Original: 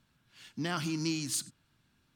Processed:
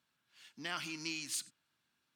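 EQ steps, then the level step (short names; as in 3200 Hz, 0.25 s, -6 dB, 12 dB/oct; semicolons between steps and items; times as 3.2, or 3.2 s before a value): HPF 630 Hz 6 dB/oct; dynamic EQ 2400 Hz, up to +7 dB, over -54 dBFS, Q 1.5; -5.5 dB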